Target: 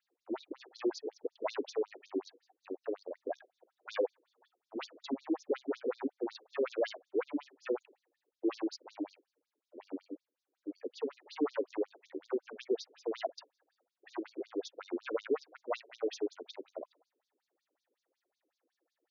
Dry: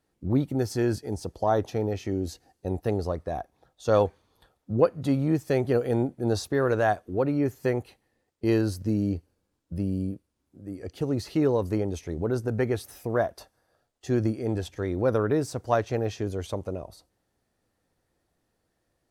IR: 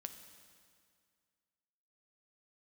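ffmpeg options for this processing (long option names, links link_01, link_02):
-filter_complex "[0:a]asplit=3[link_01][link_02][link_03];[link_01]afade=type=out:start_time=2.66:duration=0.02[link_04];[link_02]aeval=exprs='0.188*(cos(1*acos(clip(val(0)/0.188,-1,1)))-cos(1*PI/2))+0.0473*(cos(3*acos(clip(val(0)/0.188,-1,1)))-cos(3*PI/2))':channel_layout=same,afade=type=in:start_time=2.66:duration=0.02,afade=type=out:start_time=3.15:duration=0.02[link_05];[link_03]afade=type=in:start_time=3.15:duration=0.02[link_06];[link_04][link_05][link_06]amix=inputs=3:normalize=0,asoftclip=type=hard:threshold=-23dB,afftfilt=real='re*between(b*sr/1024,350*pow(5100/350,0.5+0.5*sin(2*PI*5.4*pts/sr))/1.41,350*pow(5100/350,0.5+0.5*sin(2*PI*5.4*pts/sr))*1.41)':imag='im*between(b*sr/1024,350*pow(5100/350,0.5+0.5*sin(2*PI*5.4*pts/sr))/1.41,350*pow(5100/350,0.5+0.5*sin(2*PI*5.4*pts/sr))*1.41)':win_size=1024:overlap=0.75"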